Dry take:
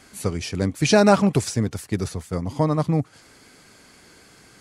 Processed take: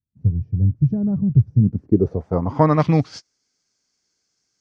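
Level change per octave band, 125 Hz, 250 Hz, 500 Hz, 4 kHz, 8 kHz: +7.0 dB, +2.5 dB, -2.0 dB, under -10 dB, under -15 dB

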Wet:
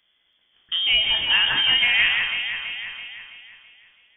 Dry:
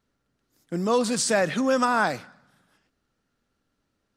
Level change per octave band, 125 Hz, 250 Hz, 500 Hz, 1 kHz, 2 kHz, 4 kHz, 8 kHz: -10.0 dB, -20.5 dB, -20.5 dB, -9.0 dB, +10.0 dB, +19.0 dB, under -40 dB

